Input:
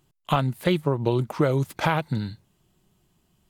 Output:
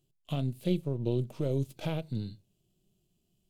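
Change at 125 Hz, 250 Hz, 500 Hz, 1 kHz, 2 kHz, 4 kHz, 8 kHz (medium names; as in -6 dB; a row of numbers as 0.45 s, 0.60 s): -6.5 dB, -7.0 dB, -9.0 dB, -20.5 dB, -19.0 dB, -11.0 dB, under -10 dB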